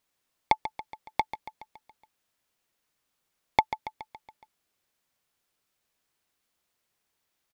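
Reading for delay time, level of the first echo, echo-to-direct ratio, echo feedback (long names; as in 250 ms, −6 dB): 140 ms, −12.0 dB, −10.5 dB, 57%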